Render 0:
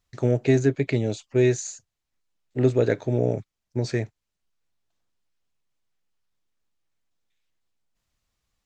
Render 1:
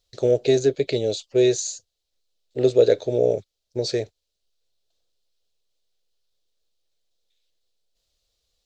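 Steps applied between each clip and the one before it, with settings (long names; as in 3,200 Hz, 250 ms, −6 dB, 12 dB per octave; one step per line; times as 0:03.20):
octave-band graphic EQ 125/250/500/1,000/2,000/4,000 Hz −8/−9/+10/−9/−8/+11 dB
level +2 dB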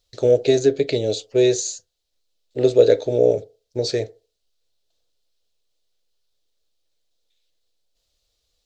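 feedback delay network reverb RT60 0.34 s, low-frequency decay 0.75×, high-frequency decay 0.4×, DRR 12 dB
level +2 dB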